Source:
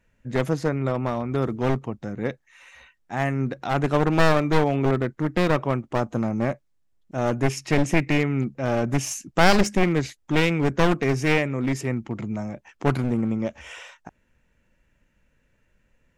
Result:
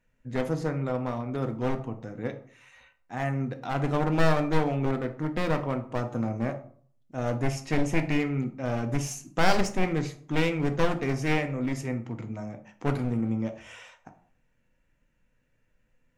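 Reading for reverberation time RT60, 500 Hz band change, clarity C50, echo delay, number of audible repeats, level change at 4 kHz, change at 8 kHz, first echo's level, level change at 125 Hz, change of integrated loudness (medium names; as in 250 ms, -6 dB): 0.50 s, -5.5 dB, 12.5 dB, no echo, no echo, -6.5 dB, -6.5 dB, no echo, -4.5 dB, -5.0 dB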